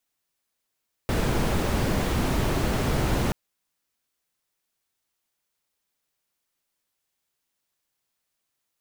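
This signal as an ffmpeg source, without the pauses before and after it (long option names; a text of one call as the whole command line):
ffmpeg -f lavfi -i "anoisesrc=color=brown:amplitude=0.313:duration=2.23:sample_rate=44100:seed=1" out.wav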